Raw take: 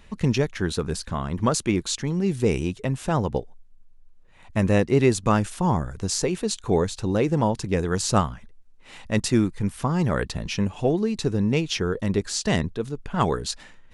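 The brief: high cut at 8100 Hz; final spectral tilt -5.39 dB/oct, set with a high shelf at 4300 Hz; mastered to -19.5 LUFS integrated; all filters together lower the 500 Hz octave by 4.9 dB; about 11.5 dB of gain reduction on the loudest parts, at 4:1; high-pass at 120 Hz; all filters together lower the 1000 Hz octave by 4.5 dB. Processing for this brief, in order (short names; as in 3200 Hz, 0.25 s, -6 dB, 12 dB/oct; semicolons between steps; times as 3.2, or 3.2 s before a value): HPF 120 Hz; LPF 8100 Hz; bell 500 Hz -5.5 dB; bell 1000 Hz -3.5 dB; high shelf 4300 Hz -8.5 dB; compressor 4:1, threshold -32 dBFS; gain +16.5 dB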